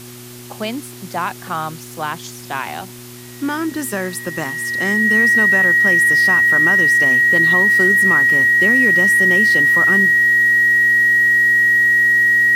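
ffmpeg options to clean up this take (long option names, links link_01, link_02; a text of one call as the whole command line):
ffmpeg -i in.wav -af "bandreject=frequency=121.7:width_type=h:width=4,bandreject=frequency=243.4:width_type=h:width=4,bandreject=frequency=365.1:width_type=h:width=4,bandreject=frequency=1900:width=30,afwtdn=0.013" out.wav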